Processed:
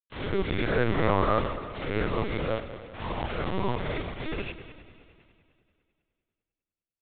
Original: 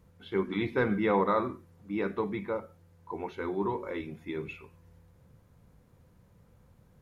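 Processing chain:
peak hold with a rise ahead of every peak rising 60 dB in 0.91 s
low-shelf EQ 110 Hz +4.5 dB
mains-hum notches 50/100/150/200/250/300/350/400 Hz
in parallel at −3 dB: hard clipping −23 dBFS, distortion −11 dB
on the sum: bit reduction 5 bits
echo machine with several playback heads 100 ms, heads first and second, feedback 64%, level −16 dB
linear-prediction vocoder at 8 kHz pitch kept
level −3.5 dB

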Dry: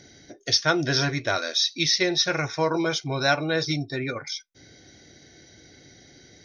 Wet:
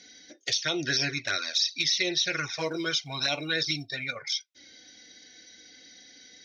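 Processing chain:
flanger swept by the level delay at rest 4.3 ms, full sweep at −18 dBFS
0:00.82–0:01.92: parametric band 3,200 Hz −6 dB 0.38 octaves
0:02.65–0:04.16: floating-point word with a short mantissa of 6 bits
meter weighting curve D
brickwall limiter −11 dBFS, peak gain reduction 9 dB
level −4.5 dB

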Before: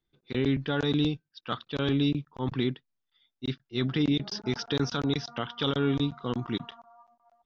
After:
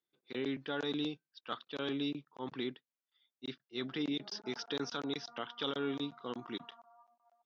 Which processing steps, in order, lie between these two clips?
high-pass filter 290 Hz 12 dB per octave
level −7 dB

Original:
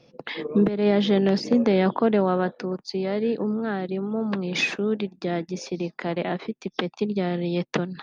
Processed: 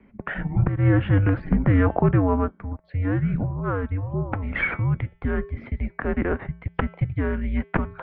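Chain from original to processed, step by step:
hum removal 231.1 Hz, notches 33
single-sideband voice off tune −290 Hz 310–2,400 Hz
0:02.11–0:02.84: expander for the loud parts 1.5 to 1, over −39 dBFS
level +5 dB

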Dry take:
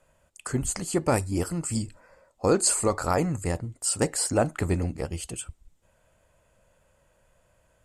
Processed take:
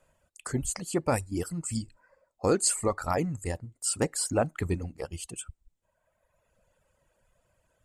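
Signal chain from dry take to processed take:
reverb reduction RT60 1.6 s
level −2.5 dB

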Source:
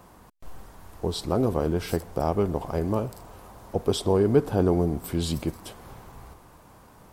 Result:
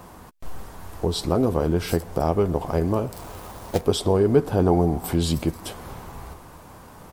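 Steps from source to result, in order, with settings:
0:04.65–0:05.15: parametric band 790 Hz +10 dB 0.46 octaves
in parallel at +2 dB: downward compressor, threshold −32 dBFS, peak gain reduction 17 dB
0:03.13–0:03.81: on the sum: log-companded quantiser 4 bits
double-tracking delay 12 ms −13 dB

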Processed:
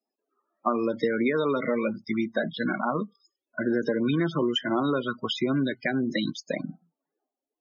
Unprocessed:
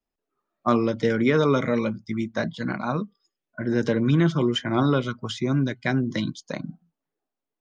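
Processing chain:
high-pass filter 240 Hz 12 dB per octave
high-shelf EQ 4,100 Hz +9.5 dB
downward compressor 12 to 1, threshold −25 dBFS, peak gain reduction 10.5 dB
spectral peaks only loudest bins 32
high-frequency loss of the air 93 metres
level +4.5 dB

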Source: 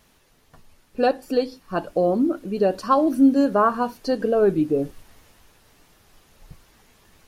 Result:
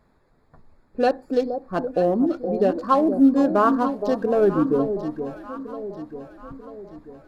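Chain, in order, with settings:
adaptive Wiener filter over 15 samples
delay that swaps between a low-pass and a high-pass 470 ms, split 810 Hz, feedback 68%, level −8 dB

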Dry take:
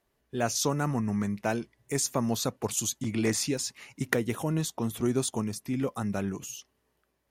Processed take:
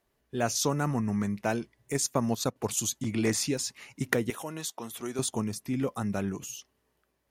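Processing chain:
0:01.93–0:02.56: transient designer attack +2 dB, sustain −10 dB
0:04.30–0:05.19: high-pass filter 830 Hz 6 dB per octave

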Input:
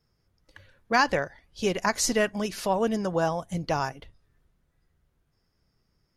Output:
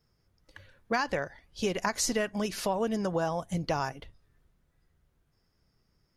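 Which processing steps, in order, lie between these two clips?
downward compressor 6 to 1, threshold −25 dBFS, peak gain reduction 9 dB

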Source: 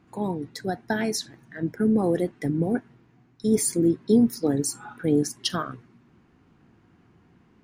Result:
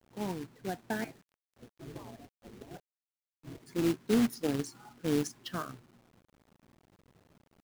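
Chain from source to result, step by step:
0:01.04–0:03.66: gate on every frequency bin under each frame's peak −15 dB weak
low-pass that shuts in the quiet parts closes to 340 Hz, open at −17.5 dBFS
high-shelf EQ 11,000 Hz +2.5 dB
log-companded quantiser 4 bits
level −8.5 dB

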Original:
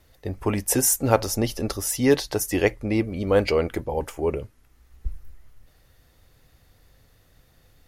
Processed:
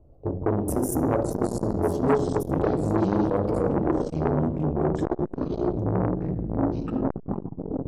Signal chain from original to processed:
adaptive Wiener filter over 25 samples
dynamic equaliser 340 Hz, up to +3 dB, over −31 dBFS, Q 1.3
delay with pitch and tempo change per echo 337 ms, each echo −5 semitones, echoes 3
drawn EQ curve 650 Hz 0 dB, 2,100 Hz −19 dB, 5,800 Hz −20 dB, 9,400 Hz −11 dB
downward compressor 3 to 1, threshold −26 dBFS, peak gain reduction 12 dB
on a send at −3.5 dB: convolution reverb RT60 1.1 s, pre-delay 3 ms
on the sum: saturating transformer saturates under 800 Hz
level +4.5 dB

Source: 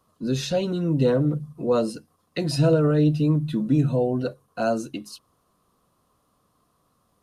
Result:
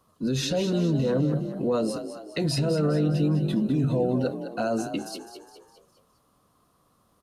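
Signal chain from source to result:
brickwall limiter −19 dBFS, peak gain reduction 10.5 dB
on a send: echo with shifted repeats 205 ms, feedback 49%, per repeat +46 Hz, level −10 dB
on the sum: level +1.5 dB

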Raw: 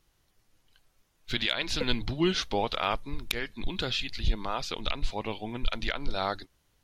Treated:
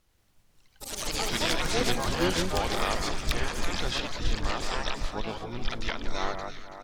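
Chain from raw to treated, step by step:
delay that swaps between a low-pass and a high-pass 167 ms, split 1,500 Hz, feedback 66%, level −6 dB
pitch-shifted copies added −12 semitones −7 dB, +7 semitones −5 dB
delay with pitch and tempo change per echo 89 ms, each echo +5 semitones, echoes 3
level −3 dB

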